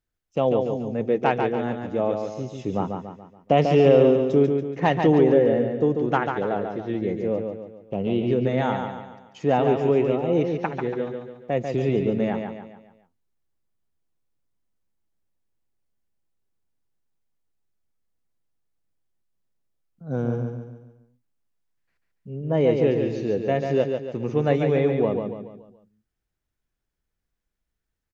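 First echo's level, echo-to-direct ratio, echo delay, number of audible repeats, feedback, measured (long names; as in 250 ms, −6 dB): −5.5 dB, −4.5 dB, 142 ms, 5, 44%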